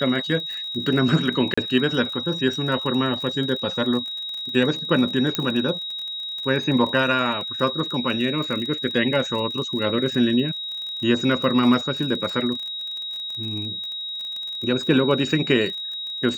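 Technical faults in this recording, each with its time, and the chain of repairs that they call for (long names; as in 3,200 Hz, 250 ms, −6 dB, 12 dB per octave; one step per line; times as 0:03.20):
surface crackle 34 per second −29 dBFS
whistle 3,800 Hz −28 dBFS
0:01.54–0:01.57: drop-out 35 ms
0:05.35: click −6 dBFS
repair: click removal
notch filter 3,800 Hz, Q 30
repair the gap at 0:01.54, 35 ms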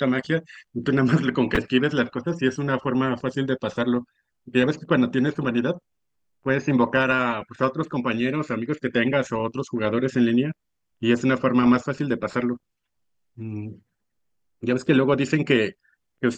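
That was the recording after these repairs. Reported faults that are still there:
none of them is left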